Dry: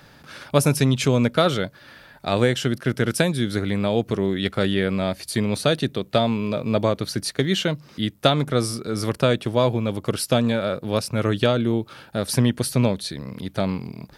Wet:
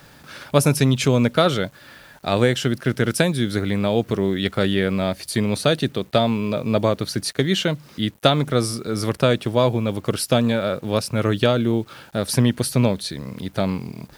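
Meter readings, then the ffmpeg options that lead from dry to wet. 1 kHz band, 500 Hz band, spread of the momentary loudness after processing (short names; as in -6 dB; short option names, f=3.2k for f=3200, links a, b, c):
+1.5 dB, +1.5 dB, 8 LU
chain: -af "acrusher=bits=8:mix=0:aa=0.000001,volume=1.5dB"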